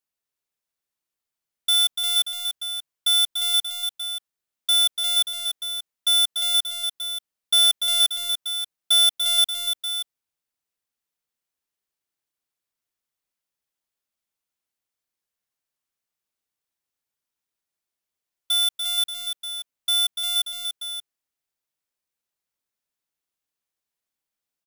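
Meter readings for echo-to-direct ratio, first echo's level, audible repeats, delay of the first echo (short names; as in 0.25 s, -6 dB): -5.0 dB, -6.5 dB, 2, 0.291 s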